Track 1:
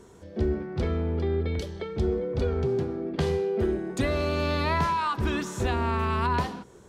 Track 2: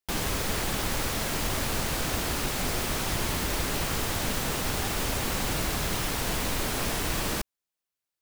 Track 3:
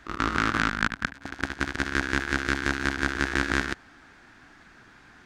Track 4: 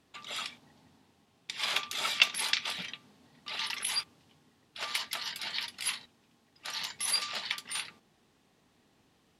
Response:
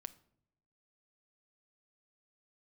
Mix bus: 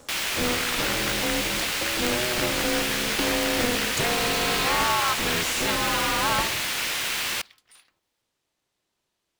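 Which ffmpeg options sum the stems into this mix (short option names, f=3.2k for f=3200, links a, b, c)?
-filter_complex "[0:a]volume=1.5dB[a];[1:a]equalizer=f=2.4k:w=0.58:g=14,volume=-10dB,asplit=2[b][c];[c]volume=-7dB[d];[2:a]adelay=250,volume=-10dB[e];[3:a]acompressor=threshold=-41dB:ratio=3,adynamicequalizer=threshold=0.00141:dfrequency=1900:dqfactor=0.7:tfrequency=1900:tqfactor=0.7:attack=5:release=100:ratio=0.375:range=3.5:mode=cutabove:tftype=highshelf,volume=-14.5dB,asplit=2[f][g];[g]volume=-5dB[h];[4:a]atrim=start_sample=2205[i];[d][h]amix=inputs=2:normalize=0[j];[j][i]afir=irnorm=-1:irlink=0[k];[a][b][e][f][k]amix=inputs=5:normalize=0,highpass=f=270:p=1,highshelf=f=3.4k:g=8.5,aeval=exprs='val(0)*sgn(sin(2*PI*120*n/s))':c=same"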